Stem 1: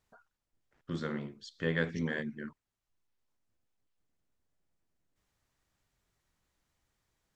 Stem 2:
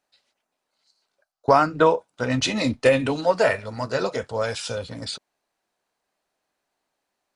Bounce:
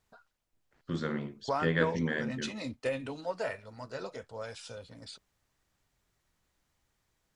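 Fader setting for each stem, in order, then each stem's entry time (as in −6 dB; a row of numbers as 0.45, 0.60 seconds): +2.5, −15.5 decibels; 0.00, 0.00 seconds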